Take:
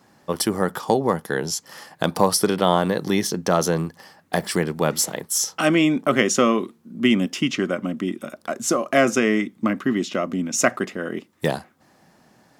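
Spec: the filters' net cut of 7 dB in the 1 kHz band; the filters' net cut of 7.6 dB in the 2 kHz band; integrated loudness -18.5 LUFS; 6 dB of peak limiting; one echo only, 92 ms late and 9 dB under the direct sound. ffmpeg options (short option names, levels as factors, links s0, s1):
-af "equalizer=f=1000:t=o:g=-8,equalizer=f=2000:t=o:g=-7,alimiter=limit=0.251:level=0:latency=1,aecho=1:1:92:0.355,volume=2"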